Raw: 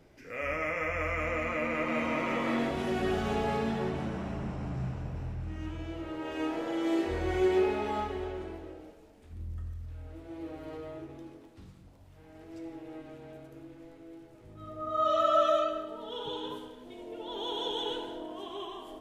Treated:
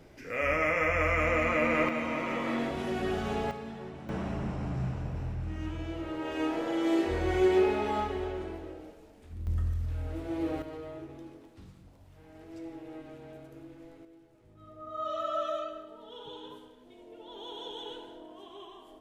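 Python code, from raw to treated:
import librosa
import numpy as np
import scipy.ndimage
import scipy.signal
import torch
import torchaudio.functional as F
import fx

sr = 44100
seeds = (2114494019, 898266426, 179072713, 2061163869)

y = fx.gain(x, sr, db=fx.steps((0.0, 5.0), (1.89, -1.5), (3.51, -10.0), (4.09, 2.0), (9.47, 9.0), (10.62, 0.0), (14.05, -7.5)))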